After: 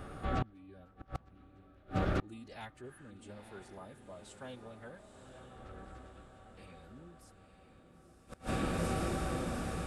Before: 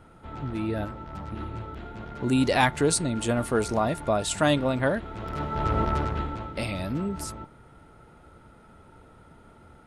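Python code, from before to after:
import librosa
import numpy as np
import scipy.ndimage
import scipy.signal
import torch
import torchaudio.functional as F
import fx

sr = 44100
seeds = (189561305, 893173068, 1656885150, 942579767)

p1 = fx.pitch_keep_formants(x, sr, semitones=-2.5)
p2 = fx.spec_repair(p1, sr, seeds[0], start_s=2.87, length_s=0.21, low_hz=740.0, high_hz=9700.0, source='before')
p3 = p2 + fx.echo_diffused(p2, sr, ms=940, feedback_pct=56, wet_db=-7.5, dry=0)
p4 = fx.gate_flip(p3, sr, shuts_db=-28.0, range_db=-32)
y = p4 * librosa.db_to_amplitude(6.5)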